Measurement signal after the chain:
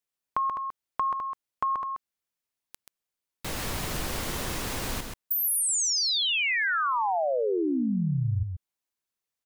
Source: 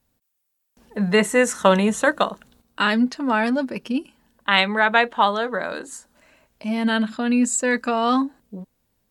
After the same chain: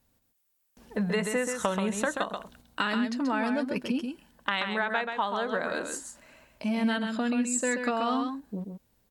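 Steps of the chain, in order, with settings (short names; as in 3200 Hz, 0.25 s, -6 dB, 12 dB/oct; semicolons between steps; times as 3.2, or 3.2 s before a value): compressor 6:1, threshold -26 dBFS; echo 0.132 s -6 dB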